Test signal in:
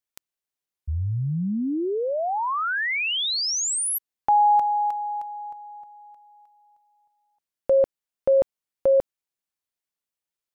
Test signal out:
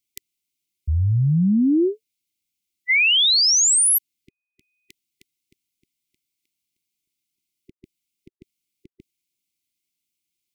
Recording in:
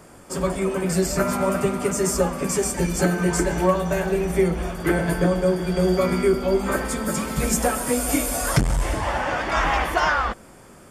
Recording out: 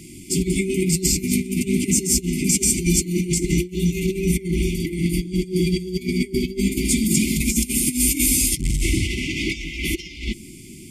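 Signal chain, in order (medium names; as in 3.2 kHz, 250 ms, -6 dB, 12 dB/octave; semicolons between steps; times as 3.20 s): bass shelf 62 Hz -6.5 dB; compressor with a negative ratio -25 dBFS, ratio -0.5; brick-wall FIR band-stop 390–2000 Hz; trim +6.5 dB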